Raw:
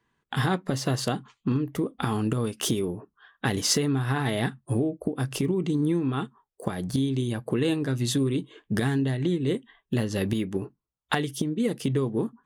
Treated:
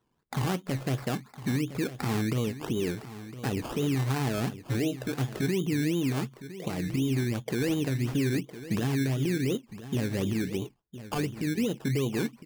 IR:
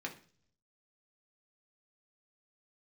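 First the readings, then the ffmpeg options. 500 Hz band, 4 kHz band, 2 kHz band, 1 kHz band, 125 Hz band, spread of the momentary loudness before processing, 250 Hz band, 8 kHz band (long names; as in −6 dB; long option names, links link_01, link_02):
−3.0 dB, −5.5 dB, −2.5 dB, −5.0 dB, −1.5 dB, 7 LU, −2.5 dB, −7.0 dB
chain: -af "lowpass=frequency=1100:poles=1,alimiter=limit=-21dB:level=0:latency=1:release=27,acrusher=samples=18:mix=1:aa=0.000001:lfo=1:lforange=10.8:lforate=2.8,aecho=1:1:1010:0.2"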